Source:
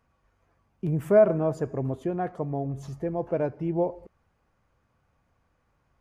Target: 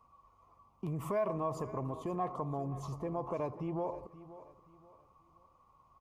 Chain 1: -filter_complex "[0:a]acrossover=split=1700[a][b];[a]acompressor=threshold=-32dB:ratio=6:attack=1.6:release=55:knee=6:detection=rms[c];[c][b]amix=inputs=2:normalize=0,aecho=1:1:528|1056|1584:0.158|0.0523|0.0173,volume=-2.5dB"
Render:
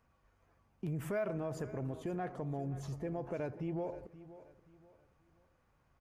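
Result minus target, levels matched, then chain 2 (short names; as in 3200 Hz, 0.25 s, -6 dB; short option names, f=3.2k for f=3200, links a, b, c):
1000 Hz band -5.5 dB
-filter_complex "[0:a]acrossover=split=1700[a][b];[a]acompressor=threshold=-32dB:ratio=6:attack=1.6:release=55:knee=6:detection=rms,lowpass=f=1.1k:t=q:w=11[c];[c][b]amix=inputs=2:normalize=0,aecho=1:1:528|1056|1584:0.158|0.0523|0.0173,volume=-2.5dB"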